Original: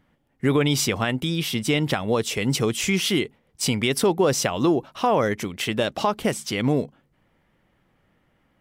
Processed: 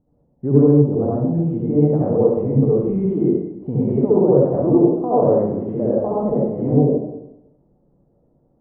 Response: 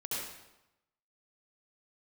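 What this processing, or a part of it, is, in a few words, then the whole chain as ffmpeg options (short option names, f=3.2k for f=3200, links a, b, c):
next room: -filter_complex "[0:a]lowpass=f=690:w=0.5412,lowpass=f=690:w=1.3066[a];[1:a]atrim=start_sample=2205[b];[a][b]afir=irnorm=-1:irlink=0,asplit=3[c][d][e];[c]afade=t=out:st=0.82:d=0.02[f];[d]lowpass=f=1.3k:w=0.5412,lowpass=f=1.3k:w=1.3066,afade=t=in:st=0.82:d=0.02,afade=t=out:st=1.33:d=0.02[g];[e]afade=t=in:st=1.33:d=0.02[h];[f][g][h]amix=inputs=3:normalize=0,volume=3.5dB"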